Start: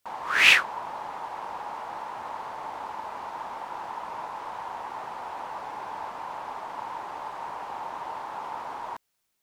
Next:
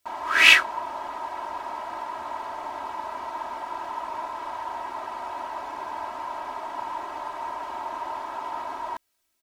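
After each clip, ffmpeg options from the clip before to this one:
-af "aecho=1:1:3.1:0.92"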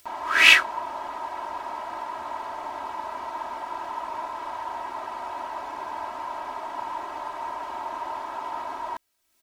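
-af "acompressor=mode=upward:threshold=-44dB:ratio=2.5"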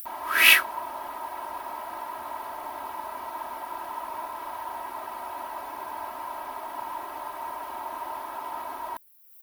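-af "aexciter=amount=11.1:drive=3.5:freq=10k,volume=-2.5dB"

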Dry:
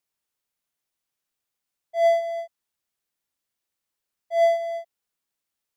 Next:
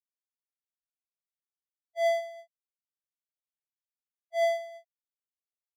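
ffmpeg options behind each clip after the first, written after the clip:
-af "highpass=f=1.4k:p=1,agate=range=-33dB:threshold=-30dB:ratio=3:detection=peak"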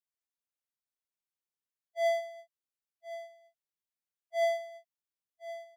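-af "aecho=1:1:1069:0.2,volume=-2.5dB"

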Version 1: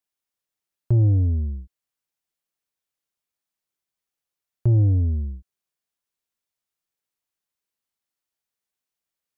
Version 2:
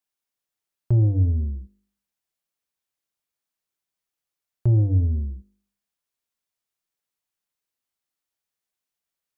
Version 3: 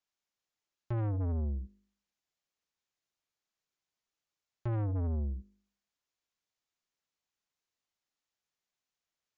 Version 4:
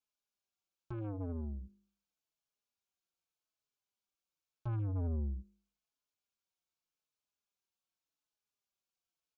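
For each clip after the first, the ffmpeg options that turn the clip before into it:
-af "bandreject=f=50.36:t=h:w=4,bandreject=f=100.72:t=h:w=4,bandreject=f=151.08:t=h:w=4,bandreject=f=201.44:t=h:w=4,bandreject=f=251.8:t=h:w=4,bandreject=f=302.16:t=h:w=4,bandreject=f=352.52:t=h:w=4,bandreject=f=402.88:t=h:w=4,bandreject=f=453.24:t=h:w=4,bandreject=f=503.6:t=h:w=4,bandreject=f=553.96:t=h:w=4"
-af "alimiter=limit=-15.5dB:level=0:latency=1:release=79,aresample=16000,asoftclip=type=tanh:threshold=-29dB,aresample=44100,volume=-1.5dB"
-filter_complex "[0:a]asuperstop=centerf=1900:order=4:qfactor=4,asplit=2[a][b];[b]adelay=4.2,afreqshift=-0.85[c];[a][c]amix=inputs=2:normalize=1,volume=-1.5dB"

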